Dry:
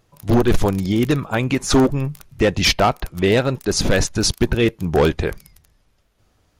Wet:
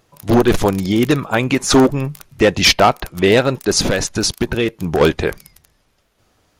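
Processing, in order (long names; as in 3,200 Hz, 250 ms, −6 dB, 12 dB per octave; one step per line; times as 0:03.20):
low-shelf EQ 130 Hz −9.5 dB
0:03.89–0:05.01: downward compressor, threshold −19 dBFS, peak gain reduction 6.5 dB
level +5 dB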